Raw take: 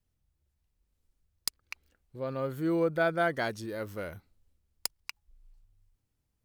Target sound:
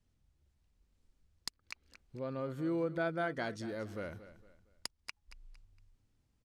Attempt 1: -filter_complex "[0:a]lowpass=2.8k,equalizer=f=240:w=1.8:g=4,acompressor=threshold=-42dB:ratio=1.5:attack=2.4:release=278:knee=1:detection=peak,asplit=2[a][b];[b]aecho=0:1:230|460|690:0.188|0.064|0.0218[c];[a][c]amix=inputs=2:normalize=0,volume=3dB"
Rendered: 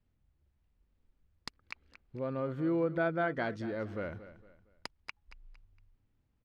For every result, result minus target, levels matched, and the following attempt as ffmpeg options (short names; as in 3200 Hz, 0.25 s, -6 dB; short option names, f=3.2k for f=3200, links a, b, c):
8000 Hz band -14.0 dB; compressor: peak gain reduction -3.5 dB
-filter_complex "[0:a]lowpass=7.6k,equalizer=f=240:w=1.8:g=4,acompressor=threshold=-42dB:ratio=1.5:attack=2.4:release=278:knee=1:detection=peak,asplit=2[a][b];[b]aecho=0:1:230|460|690:0.188|0.064|0.0218[c];[a][c]amix=inputs=2:normalize=0,volume=3dB"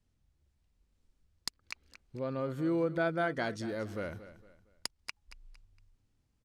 compressor: peak gain reduction -3.5 dB
-filter_complex "[0:a]lowpass=7.6k,equalizer=f=240:w=1.8:g=4,acompressor=threshold=-53dB:ratio=1.5:attack=2.4:release=278:knee=1:detection=peak,asplit=2[a][b];[b]aecho=0:1:230|460|690:0.188|0.064|0.0218[c];[a][c]amix=inputs=2:normalize=0,volume=3dB"